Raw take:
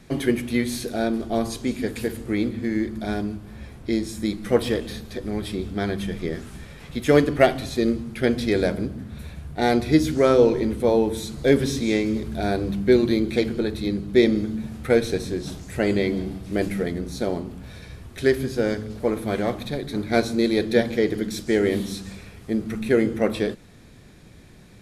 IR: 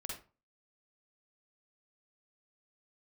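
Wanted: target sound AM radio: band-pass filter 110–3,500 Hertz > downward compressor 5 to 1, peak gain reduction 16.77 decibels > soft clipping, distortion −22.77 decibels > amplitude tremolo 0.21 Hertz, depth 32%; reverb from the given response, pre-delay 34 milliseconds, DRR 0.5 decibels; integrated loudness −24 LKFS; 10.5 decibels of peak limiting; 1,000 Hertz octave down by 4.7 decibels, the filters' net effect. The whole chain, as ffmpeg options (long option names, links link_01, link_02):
-filter_complex "[0:a]equalizer=frequency=1000:width_type=o:gain=-8,alimiter=limit=-15dB:level=0:latency=1,asplit=2[link_01][link_02];[1:a]atrim=start_sample=2205,adelay=34[link_03];[link_02][link_03]afir=irnorm=-1:irlink=0,volume=1dB[link_04];[link_01][link_04]amix=inputs=2:normalize=0,highpass=110,lowpass=3500,acompressor=threshold=-34dB:ratio=5,asoftclip=threshold=-26dB,tremolo=f=0.21:d=0.32,volume=15.5dB"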